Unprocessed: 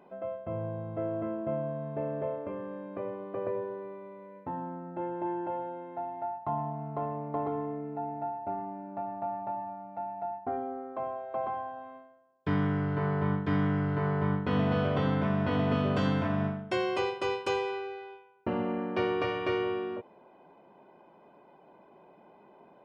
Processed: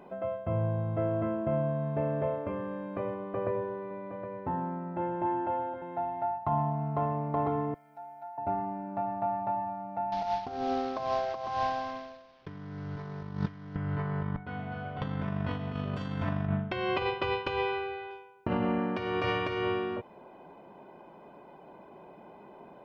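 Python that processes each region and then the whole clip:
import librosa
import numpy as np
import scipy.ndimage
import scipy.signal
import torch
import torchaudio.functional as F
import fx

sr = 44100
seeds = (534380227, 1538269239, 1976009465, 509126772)

y = fx.chain(x, sr, fx.air_absorb(metres=120.0),
    fx.echo_single(ms=767, db=-10.0), at=(3.14, 5.82))
y = fx.chain(y, sr, fx.differentiator(),
    fx.comb(ms=1.3, depth=0.97), at=(7.74, 8.38))
y = fx.chain(y, sr, fx.cvsd(bps=32000),
    fx.lowpass(hz=4900.0, slope=24),
    fx.over_compress(threshold_db=-37.0, ratio=-0.5), at=(10.12, 13.76))
y = fx.chain(y, sr, fx.lowpass(hz=3800.0, slope=12),
    fx.comb_fb(f0_hz=740.0, decay_s=0.19, harmonics='all', damping=0.0, mix_pct=90), at=(14.36, 15.02))
y = fx.chain(y, sr, fx.lowpass(hz=3900.0, slope=24),
    fx.low_shelf(hz=64.0, db=10.5), at=(16.46, 18.11))
y = fx.low_shelf(y, sr, hz=89.0, db=9.0)
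y = fx.over_compress(y, sr, threshold_db=-30.0, ratio=-0.5)
y = fx.dynamic_eq(y, sr, hz=390.0, q=0.83, threshold_db=-45.0, ratio=4.0, max_db=-5)
y = y * 10.0 ** (4.0 / 20.0)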